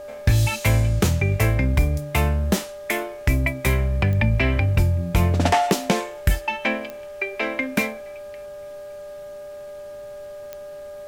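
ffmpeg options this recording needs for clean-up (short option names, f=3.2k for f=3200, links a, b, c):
-af "adeclick=t=4,bandreject=f=407.3:t=h:w=4,bandreject=f=814.6:t=h:w=4,bandreject=f=1.2219k:t=h:w=4,bandreject=f=1.6292k:t=h:w=4,bandreject=f=590:w=30,agate=range=-21dB:threshold=-29dB"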